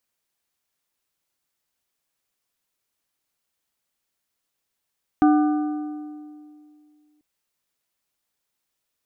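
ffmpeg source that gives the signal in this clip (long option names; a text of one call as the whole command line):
ffmpeg -f lavfi -i "aevalsrc='0.251*pow(10,-3*t/2.4)*sin(2*PI*300*t)+0.112*pow(10,-3*t/1.823)*sin(2*PI*750*t)+0.0501*pow(10,-3*t/1.583)*sin(2*PI*1200*t)+0.0224*pow(10,-3*t/1.481)*sin(2*PI*1500*t)':duration=1.99:sample_rate=44100" out.wav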